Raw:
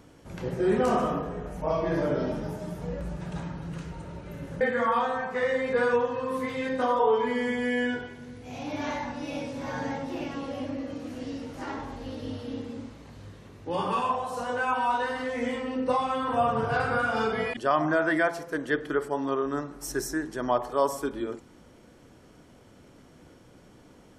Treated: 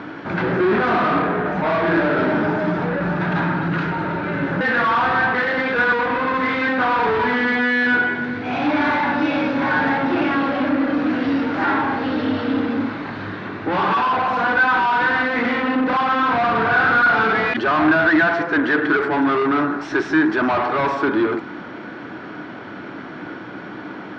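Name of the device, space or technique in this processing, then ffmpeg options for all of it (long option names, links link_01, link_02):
overdrive pedal into a guitar cabinet: -filter_complex "[0:a]asplit=2[link_01][link_02];[link_02]highpass=frequency=720:poles=1,volume=32dB,asoftclip=type=tanh:threshold=-12dB[link_03];[link_01][link_03]amix=inputs=2:normalize=0,lowpass=frequency=2700:poles=1,volume=-6dB,highpass=86,equalizer=frequency=110:width_type=q:width=4:gain=4,equalizer=frequency=190:width_type=q:width=4:gain=5,equalizer=frequency=310:width_type=q:width=4:gain=7,equalizer=frequency=510:width_type=q:width=4:gain=-7,equalizer=frequency=1500:width_type=q:width=4:gain=7,equalizer=frequency=3000:width_type=q:width=4:gain=-5,lowpass=frequency=3800:width=0.5412,lowpass=frequency=3800:width=1.3066"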